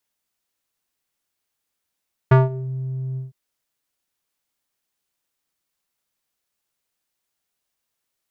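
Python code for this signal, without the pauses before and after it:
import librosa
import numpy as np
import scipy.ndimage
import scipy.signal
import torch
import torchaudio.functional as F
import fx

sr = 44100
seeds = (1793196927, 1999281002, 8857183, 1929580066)

y = fx.sub_voice(sr, note=48, wave='square', cutoff_hz=200.0, q=1.4, env_oct=3.0, env_s=0.38, attack_ms=8.3, decay_s=0.17, sustain_db=-19, release_s=0.15, note_s=0.86, slope=12)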